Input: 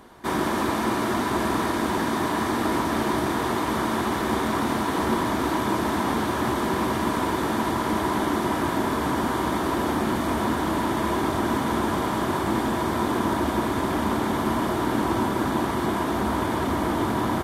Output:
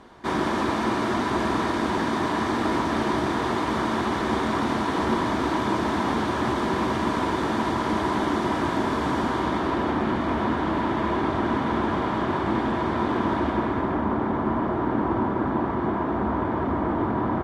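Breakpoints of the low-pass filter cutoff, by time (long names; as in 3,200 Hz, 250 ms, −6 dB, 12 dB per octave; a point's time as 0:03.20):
0:09.16 6,000 Hz
0:09.94 3,200 Hz
0:13.39 3,200 Hz
0:14.05 1,500 Hz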